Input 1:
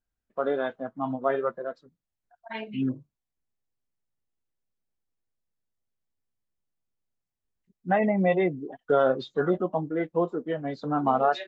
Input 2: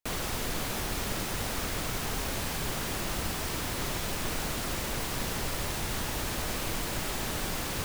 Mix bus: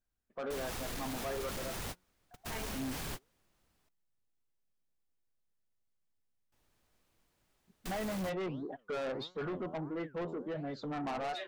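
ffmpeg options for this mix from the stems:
ffmpeg -i stem1.wav -i stem2.wav -filter_complex "[0:a]flanger=delay=5.4:depth=7.1:regen=89:speed=1.5:shape=sinusoidal,volume=3dB,asplit=2[link_01][link_02];[1:a]adelay=450,volume=-1.5dB,asplit=3[link_03][link_04][link_05];[link_03]atrim=end=3.89,asetpts=PTS-STARTPTS,afade=type=out:start_time=3.886:duration=0.004:curve=hsin[link_06];[link_04]atrim=start=3.89:end=6.52,asetpts=PTS-STARTPTS,volume=0[link_07];[link_05]atrim=start=6.52,asetpts=PTS-STARTPTS,afade=type=in:duration=0.004:curve=hsin[link_08];[link_06][link_07][link_08]concat=n=3:v=0:a=1[link_09];[link_02]apad=whole_len=365816[link_10];[link_09][link_10]sidechaingate=range=-42dB:threshold=-55dB:ratio=16:detection=peak[link_11];[link_01][link_11]amix=inputs=2:normalize=0,asoftclip=type=tanh:threshold=-29dB,alimiter=level_in=10dB:limit=-24dB:level=0:latency=1:release=31,volume=-10dB" out.wav

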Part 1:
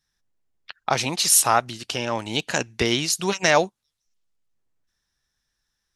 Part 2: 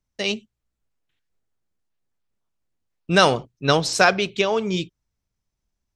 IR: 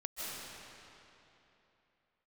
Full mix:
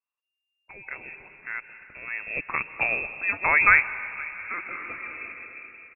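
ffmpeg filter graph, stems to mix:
-filter_complex "[0:a]volume=-4dB,afade=type=in:start_time=1.98:duration=0.32:silence=0.237137,asplit=3[link_01][link_02][link_03];[link_02]volume=-12dB[link_04];[1:a]equalizer=frequency=150:width_type=o:width=1:gain=-9.5,adelay=500,volume=-1dB,asplit=2[link_05][link_06];[link_06]volume=-17.5dB[link_07];[link_03]apad=whole_len=284516[link_08];[link_05][link_08]sidechaingate=range=-23dB:threshold=-44dB:ratio=16:detection=peak[link_09];[2:a]atrim=start_sample=2205[link_10];[link_04][link_07]amix=inputs=2:normalize=0[link_11];[link_11][link_10]afir=irnorm=-1:irlink=0[link_12];[link_01][link_09][link_12]amix=inputs=3:normalize=0,lowpass=frequency=2400:width_type=q:width=0.5098,lowpass=frequency=2400:width_type=q:width=0.6013,lowpass=frequency=2400:width_type=q:width=0.9,lowpass=frequency=2400:width_type=q:width=2.563,afreqshift=-2800"

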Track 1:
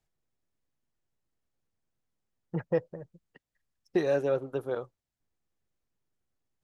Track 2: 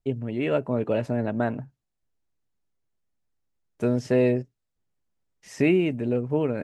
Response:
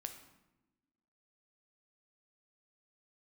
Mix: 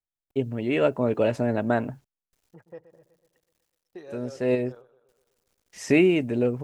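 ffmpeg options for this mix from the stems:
-filter_complex "[0:a]volume=-15dB,asplit=3[link_01][link_02][link_03];[link_02]volume=-14dB[link_04];[1:a]adynamicequalizer=threshold=0.00178:dfrequency=7100:dqfactor=0.85:tfrequency=7100:tqfactor=0.85:attack=5:release=100:ratio=0.375:range=2:mode=boostabove:tftype=bell,acrusher=bits=11:mix=0:aa=0.000001,adelay=300,volume=3dB[link_05];[link_03]apad=whole_len=306011[link_06];[link_05][link_06]sidechaincompress=threshold=-49dB:ratio=10:attack=16:release=295[link_07];[link_04]aecho=0:1:124|248|372|496|620|744|868|992|1116:1|0.58|0.336|0.195|0.113|0.0656|0.0381|0.0221|0.0128[link_08];[link_01][link_07][link_08]amix=inputs=3:normalize=0,equalizer=frequency=150:width_type=o:width=1.2:gain=-4.5"

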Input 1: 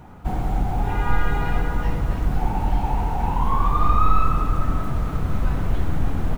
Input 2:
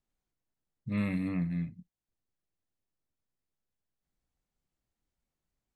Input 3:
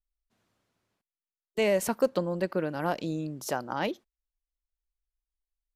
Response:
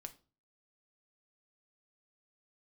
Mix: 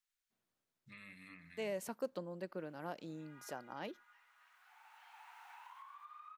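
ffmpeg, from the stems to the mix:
-filter_complex "[0:a]acrossover=split=3100[link_01][link_02];[link_02]acompressor=threshold=-54dB:ratio=4:attack=1:release=60[link_03];[link_01][link_03]amix=inputs=2:normalize=0,adelay=2300,volume=-12.5dB[link_04];[1:a]alimiter=level_in=6dB:limit=-24dB:level=0:latency=1:release=63,volume=-6dB,volume=0.5dB,asplit=2[link_05][link_06];[link_06]volume=-18.5dB[link_07];[2:a]highpass=120,volume=-15dB,asplit=2[link_08][link_09];[link_09]apad=whole_len=382446[link_10];[link_04][link_10]sidechaincompress=threshold=-57dB:ratio=8:attack=27:release=1370[link_11];[link_11][link_05]amix=inputs=2:normalize=0,highpass=frequency=1300:width=0.5412,highpass=frequency=1300:width=1.3066,acompressor=threshold=-52dB:ratio=16,volume=0dB[link_12];[3:a]atrim=start_sample=2205[link_13];[link_07][link_13]afir=irnorm=-1:irlink=0[link_14];[link_08][link_12][link_14]amix=inputs=3:normalize=0"

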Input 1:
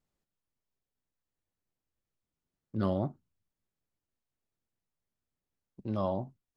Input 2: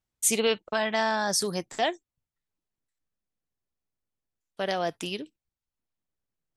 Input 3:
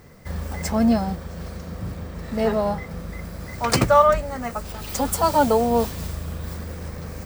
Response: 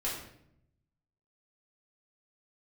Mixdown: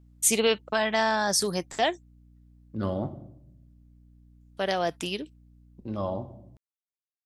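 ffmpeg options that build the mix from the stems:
-filter_complex "[0:a]volume=-1dB,asplit=2[link_01][link_02];[link_02]volume=-11.5dB[link_03];[1:a]volume=1.5dB[link_04];[3:a]atrim=start_sample=2205[link_05];[link_03][link_05]afir=irnorm=-1:irlink=0[link_06];[link_01][link_04][link_06]amix=inputs=3:normalize=0,aeval=exprs='val(0)+0.002*(sin(2*PI*60*n/s)+sin(2*PI*2*60*n/s)/2+sin(2*PI*3*60*n/s)/3+sin(2*PI*4*60*n/s)/4+sin(2*PI*5*60*n/s)/5)':channel_layout=same"

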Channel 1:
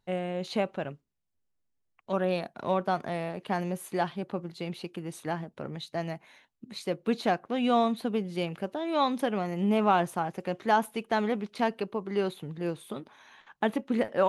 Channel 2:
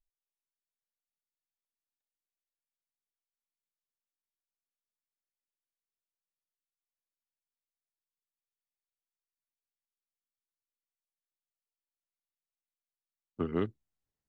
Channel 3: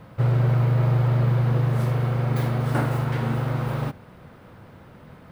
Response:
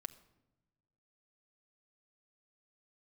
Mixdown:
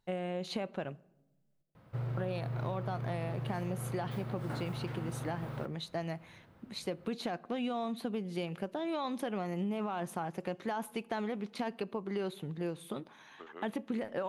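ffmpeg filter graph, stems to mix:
-filter_complex "[0:a]alimiter=limit=-20.5dB:level=0:latency=1:release=17,volume=-4.5dB,asplit=3[link_01][link_02][link_03];[link_01]atrim=end=1.62,asetpts=PTS-STARTPTS,afade=type=out:start_time=1.616:duration=0.004:curve=hsin[link_04];[link_02]atrim=start=1.62:end=2.17,asetpts=PTS-STARTPTS,volume=0[link_05];[link_03]atrim=start=2.17,asetpts=PTS-STARTPTS,afade=type=in:duration=0.004:curve=hsin[link_06];[link_04][link_05][link_06]concat=n=3:v=0:a=1,asplit=2[link_07][link_08];[link_08]volume=-4dB[link_09];[1:a]highpass=620,volume=-9dB[link_10];[2:a]adelay=1750,volume=-14.5dB[link_11];[3:a]atrim=start_sample=2205[link_12];[link_09][link_12]afir=irnorm=-1:irlink=0[link_13];[link_07][link_10][link_11][link_13]amix=inputs=4:normalize=0,acompressor=threshold=-32dB:ratio=6"

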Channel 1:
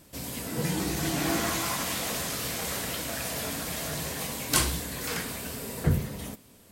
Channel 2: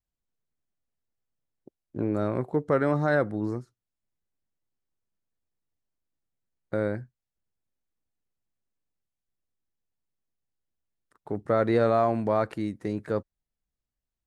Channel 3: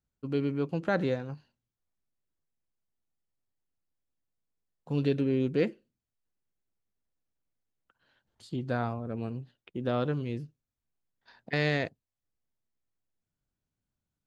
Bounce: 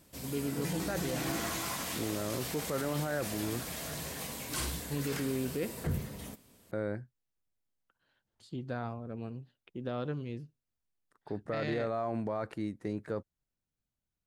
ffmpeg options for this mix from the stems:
ffmpeg -i stem1.wav -i stem2.wav -i stem3.wav -filter_complex "[0:a]volume=-6.5dB[link_01];[1:a]volume=-5.5dB[link_02];[2:a]volume=-5.5dB[link_03];[link_01][link_02][link_03]amix=inputs=3:normalize=0,alimiter=level_in=0.5dB:limit=-24dB:level=0:latency=1:release=17,volume=-0.5dB" out.wav

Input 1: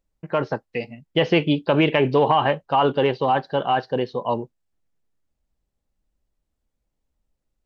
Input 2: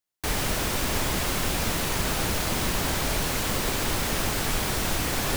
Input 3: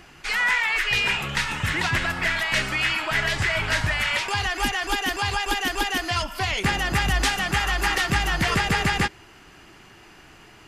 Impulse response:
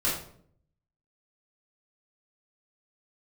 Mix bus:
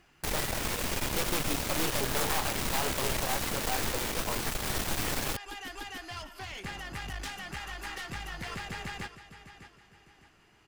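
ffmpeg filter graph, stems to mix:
-filter_complex "[0:a]volume=-11dB[link_01];[1:a]volume=2dB[link_02];[2:a]volume=-15dB,asplit=2[link_03][link_04];[link_04]volume=-14.5dB[link_05];[link_02][link_03]amix=inputs=2:normalize=0,alimiter=limit=-19dB:level=0:latency=1:release=242,volume=0dB[link_06];[link_05]aecho=0:1:607|1214|1821|2428|3035:1|0.32|0.102|0.0328|0.0105[link_07];[link_01][link_06][link_07]amix=inputs=3:normalize=0,aeval=exprs='(mod(9.44*val(0)+1,2)-1)/9.44':channel_layout=same,aeval=exprs='clip(val(0),-1,0.0112)':channel_layout=same"

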